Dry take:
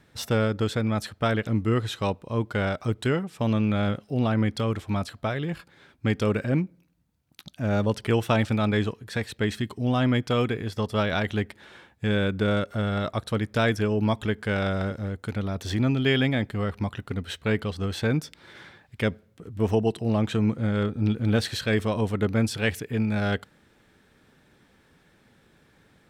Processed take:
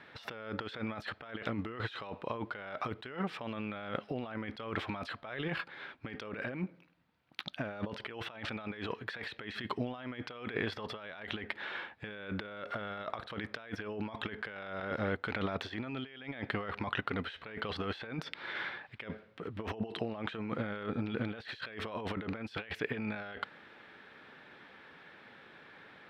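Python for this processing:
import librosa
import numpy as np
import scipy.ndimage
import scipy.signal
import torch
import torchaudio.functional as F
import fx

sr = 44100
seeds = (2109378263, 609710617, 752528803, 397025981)

y = fx.highpass(x, sr, hz=1400.0, slope=6)
y = fx.over_compress(y, sr, threshold_db=-45.0, ratio=-1.0)
y = fx.air_absorb(y, sr, metres=370.0)
y = y * librosa.db_to_amplitude(7.0)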